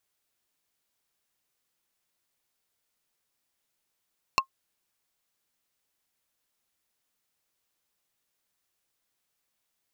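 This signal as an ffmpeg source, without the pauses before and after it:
-f lavfi -i "aevalsrc='0.2*pow(10,-3*t/0.09)*sin(2*PI*1070*t)+0.158*pow(10,-3*t/0.03)*sin(2*PI*2675*t)+0.126*pow(10,-3*t/0.017)*sin(2*PI*4280*t)+0.1*pow(10,-3*t/0.013)*sin(2*PI*5350*t)+0.0794*pow(10,-3*t/0.01)*sin(2*PI*6955*t)':d=0.45:s=44100"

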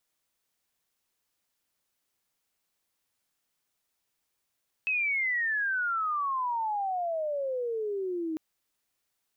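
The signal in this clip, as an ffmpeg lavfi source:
-f lavfi -i "aevalsrc='pow(10,(-25-4.5*t/3.5)/20)*sin(2*PI*2600*3.5/log(310/2600)*(exp(log(310/2600)*t/3.5)-1))':d=3.5:s=44100"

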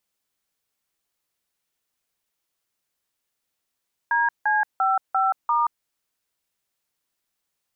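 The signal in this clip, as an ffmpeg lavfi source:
-f lavfi -i "aevalsrc='0.0944*clip(min(mod(t,0.345),0.178-mod(t,0.345))/0.002,0,1)*(eq(floor(t/0.345),0)*(sin(2*PI*941*mod(t,0.345))+sin(2*PI*1633*mod(t,0.345)))+eq(floor(t/0.345),1)*(sin(2*PI*852*mod(t,0.345))+sin(2*PI*1633*mod(t,0.345)))+eq(floor(t/0.345),2)*(sin(2*PI*770*mod(t,0.345))+sin(2*PI*1336*mod(t,0.345)))+eq(floor(t/0.345),3)*(sin(2*PI*770*mod(t,0.345))+sin(2*PI*1336*mod(t,0.345)))+eq(floor(t/0.345),4)*(sin(2*PI*941*mod(t,0.345))+sin(2*PI*1209*mod(t,0.345))))':d=1.725:s=44100"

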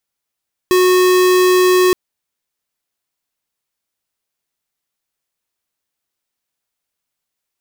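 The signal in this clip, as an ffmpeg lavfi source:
-f lavfi -i "aevalsrc='0.282*(2*lt(mod(366*t,1),0.5)-1)':d=1.22:s=44100"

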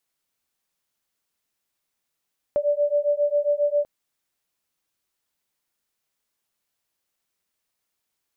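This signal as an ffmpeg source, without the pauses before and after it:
-f lavfi -i "aevalsrc='0.0794*(sin(2*PI*580*t)+sin(2*PI*587.4*t))':d=1.29:s=44100"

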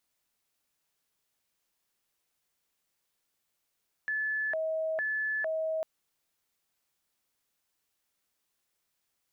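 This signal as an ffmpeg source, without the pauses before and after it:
-f lavfi -i "aevalsrc='0.0376*sin(2*PI*(1184*t+546/1.1*(0.5-abs(mod(1.1*t,1)-0.5))))':d=1.75:s=44100"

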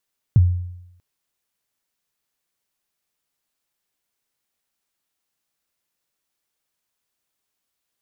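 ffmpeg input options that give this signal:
-f lavfi -i "aevalsrc='0.447*pow(10,-3*t/0.83)*sin(2*PI*(140*0.031/log(89/140)*(exp(log(89/140)*min(t,0.031)/0.031)-1)+89*max(t-0.031,0)))':d=0.64:s=44100"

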